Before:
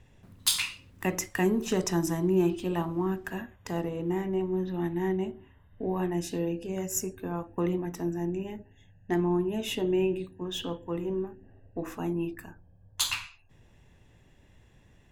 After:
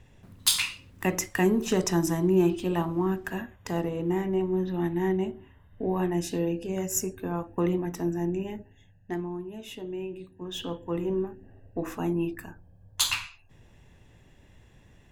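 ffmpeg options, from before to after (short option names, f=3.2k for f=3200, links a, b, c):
-af "volume=14.5dB,afade=t=out:st=8.58:d=0.73:silence=0.266073,afade=t=in:st=10.12:d=0.89:silence=0.251189"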